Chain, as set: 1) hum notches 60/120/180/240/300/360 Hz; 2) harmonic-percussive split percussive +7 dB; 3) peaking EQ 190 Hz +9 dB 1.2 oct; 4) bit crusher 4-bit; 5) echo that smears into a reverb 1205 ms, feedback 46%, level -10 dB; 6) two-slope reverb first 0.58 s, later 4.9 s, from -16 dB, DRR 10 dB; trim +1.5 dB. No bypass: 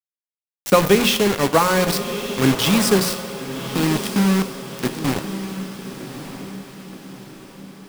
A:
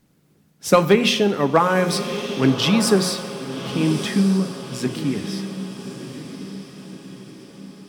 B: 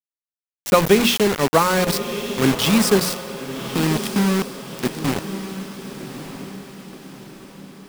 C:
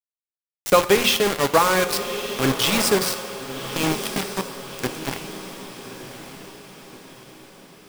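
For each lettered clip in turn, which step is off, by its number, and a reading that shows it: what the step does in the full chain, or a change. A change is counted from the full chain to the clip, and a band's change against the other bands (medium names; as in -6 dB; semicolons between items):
4, distortion -8 dB; 6, echo-to-direct -6.0 dB to -9.0 dB; 3, 125 Hz band -7.5 dB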